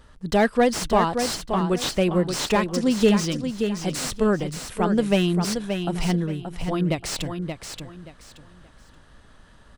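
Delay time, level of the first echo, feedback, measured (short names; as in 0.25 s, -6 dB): 0.577 s, -7.0 dB, 25%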